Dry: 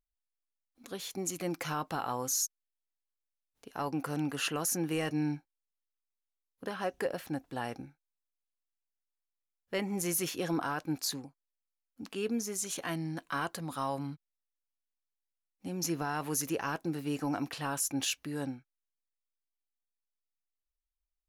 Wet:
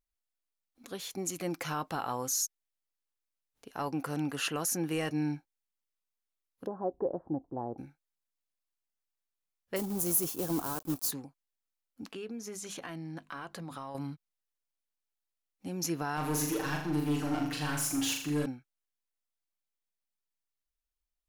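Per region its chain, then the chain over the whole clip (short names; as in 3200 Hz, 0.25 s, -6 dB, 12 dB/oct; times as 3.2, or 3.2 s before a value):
6.66–7.78 steep low-pass 960 Hz + bell 350 Hz +6.5 dB 0.35 oct
9.76–11.12 block floating point 3-bit + EQ curve 380 Hz 0 dB, 560 Hz -3 dB, 1100 Hz -3 dB, 2000 Hz -16 dB, 9100 Hz +2 dB, 15000 Hz +9 dB
12.11–13.95 high shelf 6400 Hz -10 dB + notches 50/100/150/200/250 Hz + compressor, threshold -37 dBFS
16.17–18.46 hard clip -33.5 dBFS + comb 6.6 ms, depth 81% + flutter echo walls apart 6.9 m, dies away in 0.59 s
whole clip: dry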